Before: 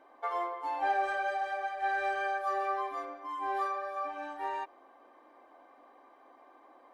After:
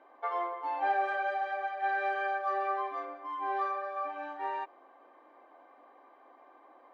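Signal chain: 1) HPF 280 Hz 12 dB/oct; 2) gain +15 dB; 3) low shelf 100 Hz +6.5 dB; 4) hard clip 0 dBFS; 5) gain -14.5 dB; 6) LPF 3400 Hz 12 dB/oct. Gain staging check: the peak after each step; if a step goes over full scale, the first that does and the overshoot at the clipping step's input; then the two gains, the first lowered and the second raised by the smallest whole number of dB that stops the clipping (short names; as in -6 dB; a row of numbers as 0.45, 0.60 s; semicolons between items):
-19.5, -4.5, -4.0, -4.0, -18.5, -18.5 dBFS; no overload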